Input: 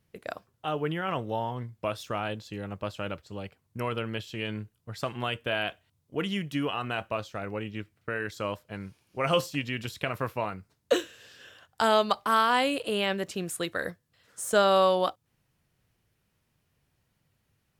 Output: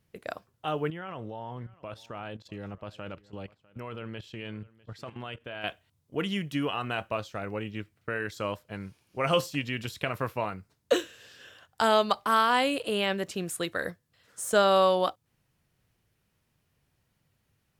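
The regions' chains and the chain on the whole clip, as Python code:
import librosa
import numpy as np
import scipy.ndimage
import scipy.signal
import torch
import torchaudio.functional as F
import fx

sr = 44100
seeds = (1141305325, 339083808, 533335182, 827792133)

y = fx.chain(x, sr, fx.high_shelf(hz=6600.0, db=-12.0),
    fx.level_steps(step_db=13),
    fx.echo_single(ms=650, db=-22.5), at=(0.9, 5.64))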